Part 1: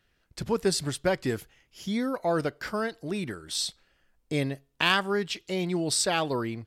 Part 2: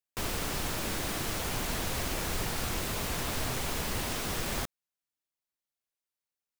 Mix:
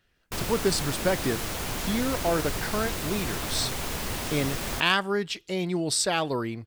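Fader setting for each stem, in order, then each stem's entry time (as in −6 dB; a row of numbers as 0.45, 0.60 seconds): +0.5, +1.5 decibels; 0.00, 0.15 seconds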